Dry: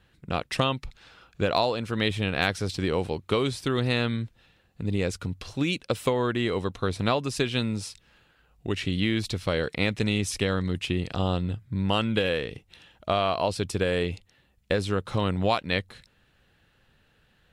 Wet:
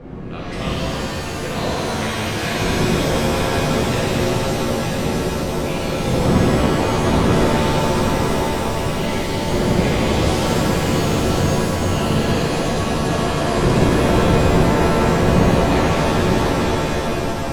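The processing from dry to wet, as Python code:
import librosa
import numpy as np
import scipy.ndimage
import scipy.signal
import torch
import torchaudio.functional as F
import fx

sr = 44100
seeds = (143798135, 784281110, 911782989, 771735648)

p1 = fx.dmg_wind(x, sr, seeds[0], corner_hz=290.0, level_db=-23.0)
p2 = fx.peak_eq(p1, sr, hz=2100.0, db=4.5, octaves=0.38)
p3 = p2 + fx.echo_single(p2, sr, ms=905, db=-6.0, dry=0)
p4 = fx.rev_shimmer(p3, sr, seeds[1], rt60_s=3.8, semitones=7, shimmer_db=-2, drr_db=-9.5)
y = F.gain(torch.from_numpy(p4), -10.0).numpy()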